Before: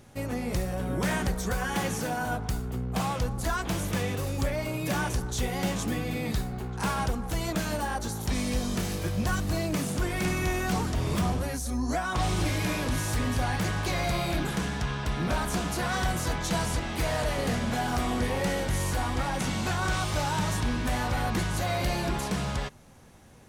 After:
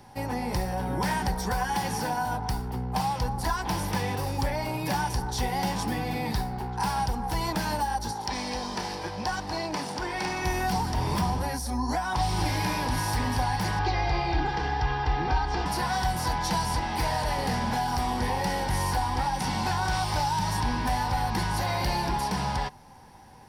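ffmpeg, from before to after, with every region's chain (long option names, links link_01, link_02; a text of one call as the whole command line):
ffmpeg -i in.wav -filter_complex "[0:a]asettb=1/sr,asplit=3[link_01][link_02][link_03];[link_01]atrim=end=8.114[link_04];[link_02]atrim=start=8.11:end=10.45,asetpts=PTS-STARTPTS,afade=type=in:duration=0.004:curve=qsin,afade=type=out:start_time=2.336:duration=0.004:curve=qsin,bass=frequency=250:gain=-11,treble=frequency=4000:gain=9,adynamicsmooth=sensitivity=1.5:basefreq=3600[link_05];[link_03]atrim=start=10.446[link_06];[link_04][link_05]acrossfade=duration=0.004:curve1=hsin:curve2=qsin[link_07];[link_07][link_06]acrossfade=duration=0.004:curve1=qsin:curve2=hsin,asettb=1/sr,asplit=3[link_08][link_09][link_10];[link_08]atrim=end=13.794[link_11];[link_09]atrim=start=13.79:end=15.66,asetpts=PTS-STARTPTS,afade=type=in:duration=0.004:curve=qsin,afade=type=out:start_time=1.866:duration=0.004:curve=qsin,lowpass=frequency=6000:width=0.5412,lowpass=frequency=6000:width=1.3066,aemphasis=mode=reproduction:type=50fm,aecho=1:1:2.5:0.79,atrim=end_sample=82467[link_12];[link_10]atrim=start=15.656[link_13];[link_11][link_12]acrossfade=duration=0.004:curve1=hsin:curve2=qsin[link_14];[link_14][link_13]acrossfade=duration=0.004:curve1=qsin:curve2=hsin,superequalizer=9b=3.98:11b=1.41:14b=1.78:15b=0.501,acrossover=split=180|3000[link_15][link_16][link_17];[link_16]acompressor=threshold=-26dB:ratio=6[link_18];[link_15][link_18][link_17]amix=inputs=3:normalize=0" out.wav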